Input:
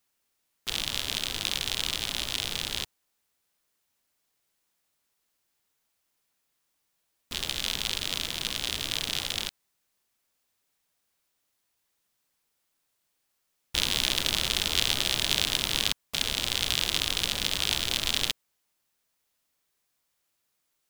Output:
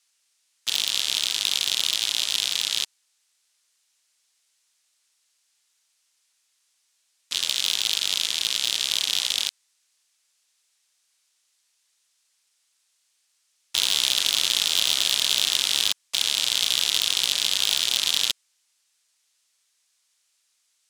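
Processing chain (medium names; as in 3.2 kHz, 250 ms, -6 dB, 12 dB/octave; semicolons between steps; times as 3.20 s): frequency weighting ITU-R 468; saturation -7 dBFS, distortion -9 dB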